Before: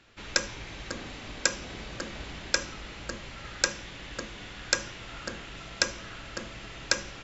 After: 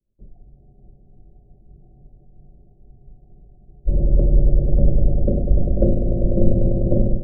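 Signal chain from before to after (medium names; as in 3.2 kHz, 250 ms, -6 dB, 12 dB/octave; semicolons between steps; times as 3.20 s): random holes in the spectrogram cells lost 45%; Chebyshev low-pass 730 Hz, order 8; tilt EQ -4 dB/octave; on a send: echo with a slow build-up 99 ms, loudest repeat 5, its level -6 dB; on the sum: simulated room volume 910 m³, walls furnished, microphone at 1.1 m; level rider gain up to 12 dB; bass shelf 420 Hz +5 dB; hum notches 60/120/180/240/300/360 Hz; spectral freeze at 0.43 s, 3.43 s; three bands expanded up and down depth 70%; trim -4.5 dB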